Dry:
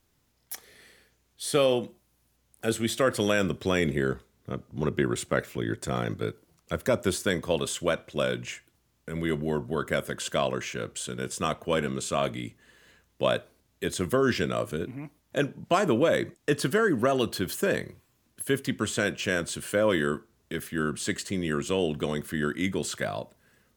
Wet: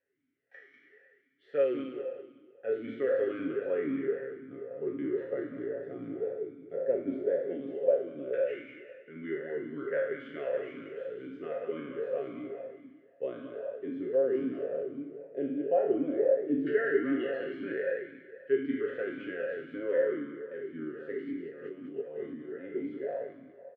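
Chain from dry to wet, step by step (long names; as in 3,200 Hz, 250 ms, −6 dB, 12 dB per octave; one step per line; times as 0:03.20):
peak hold with a decay on every bin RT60 1.09 s
comb filter 7.3 ms, depth 58%
0:21.27–0:22.57: compressor whose output falls as the input rises −29 dBFS, ratio −0.5
auto-filter low-pass saw down 0.12 Hz 740–1,600 Hz
repeating echo 195 ms, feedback 39%, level −5.5 dB
formant filter swept between two vowels e-i 1.9 Hz
level −2.5 dB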